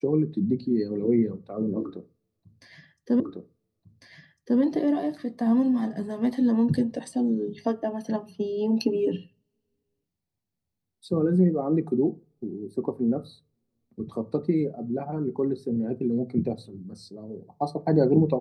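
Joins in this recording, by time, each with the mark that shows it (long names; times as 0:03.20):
0:03.20: the same again, the last 1.4 s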